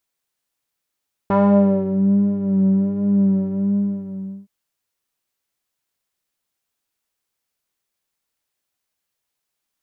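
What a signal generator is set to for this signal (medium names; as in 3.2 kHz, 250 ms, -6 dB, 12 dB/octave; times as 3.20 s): synth patch with vibrato G3, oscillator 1 square, oscillator 2 saw, interval 0 st, detune 16 cents, oscillator 2 level -0.5 dB, sub -18 dB, filter lowpass, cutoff 260 Hz, Q 2, filter envelope 2 oct, filter decay 0.70 s, filter sustain 10%, attack 1.5 ms, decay 0.64 s, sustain -6 dB, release 1.08 s, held 2.09 s, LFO 1.3 Hz, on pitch 40 cents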